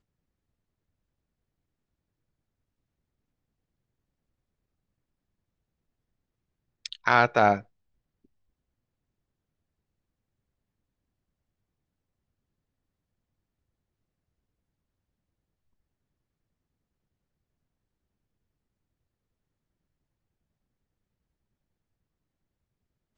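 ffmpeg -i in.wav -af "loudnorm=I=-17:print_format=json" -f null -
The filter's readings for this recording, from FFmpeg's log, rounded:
"input_i" : "-23.2",
"input_tp" : "-3.8",
"input_lra" : "0.0",
"input_thresh" : "-34.4",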